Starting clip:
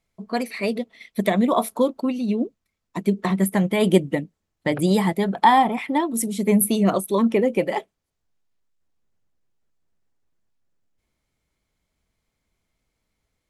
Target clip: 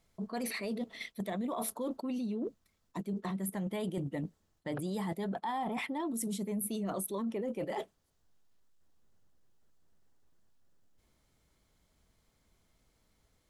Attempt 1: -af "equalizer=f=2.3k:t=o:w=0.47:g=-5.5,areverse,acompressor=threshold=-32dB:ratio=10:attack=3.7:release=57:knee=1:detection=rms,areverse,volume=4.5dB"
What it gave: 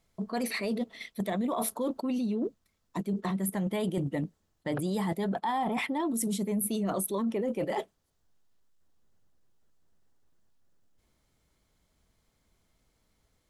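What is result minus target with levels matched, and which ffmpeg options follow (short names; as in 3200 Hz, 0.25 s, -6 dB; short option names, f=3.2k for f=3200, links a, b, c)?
compressor: peak gain reduction -5.5 dB
-af "equalizer=f=2.3k:t=o:w=0.47:g=-5.5,areverse,acompressor=threshold=-38dB:ratio=10:attack=3.7:release=57:knee=1:detection=rms,areverse,volume=4.5dB"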